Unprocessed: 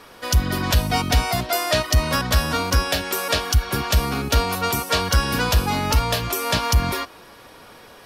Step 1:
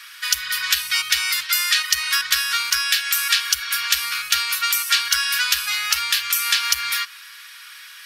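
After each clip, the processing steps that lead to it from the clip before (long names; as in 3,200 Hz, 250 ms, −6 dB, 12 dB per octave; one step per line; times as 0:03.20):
inverse Chebyshev high-pass filter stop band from 760 Hz, stop band 40 dB
in parallel at −0.5 dB: downward compressor, threshold −31 dBFS, peak gain reduction 12.5 dB
on the sum: level +3.5 dB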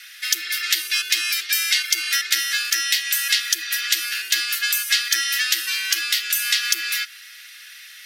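frequency shifter +270 Hz
level −1 dB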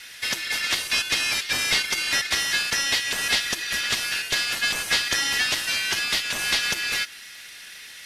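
variable-slope delta modulation 64 kbit/s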